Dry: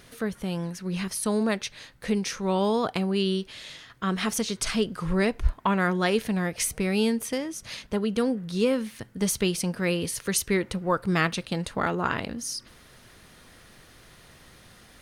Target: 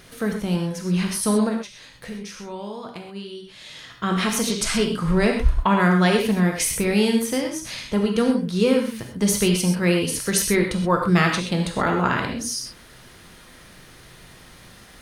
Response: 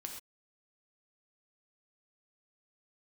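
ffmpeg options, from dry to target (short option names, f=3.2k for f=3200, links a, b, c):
-filter_complex "[0:a]asplit=3[a][b][c];[a]afade=t=out:st=1.48:d=0.02[d];[b]acompressor=threshold=-44dB:ratio=2.5,afade=t=in:st=1.48:d=0.02,afade=t=out:st=3.76:d=0.02[e];[c]afade=t=in:st=3.76:d=0.02[f];[d][e][f]amix=inputs=3:normalize=0[g];[1:a]atrim=start_sample=2205[h];[g][h]afir=irnorm=-1:irlink=0,volume=8dB"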